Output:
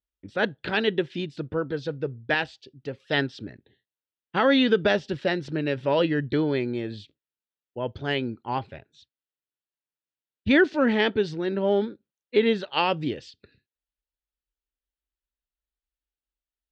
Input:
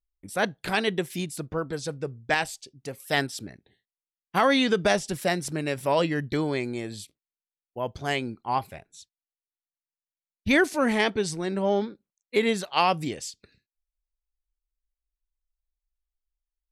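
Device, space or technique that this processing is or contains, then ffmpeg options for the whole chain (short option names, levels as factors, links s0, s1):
guitar cabinet: -af "highpass=76,equalizer=f=180:t=q:w=4:g=-6,equalizer=f=720:t=q:w=4:g=-9,equalizer=f=1100:t=q:w=4:g=-9,equalizer=f=2200:t=q:w=4:g=-8,lowpass=f=3600:w=0.5412,lowpass=f=3600:w=1.3066,volume=1.58"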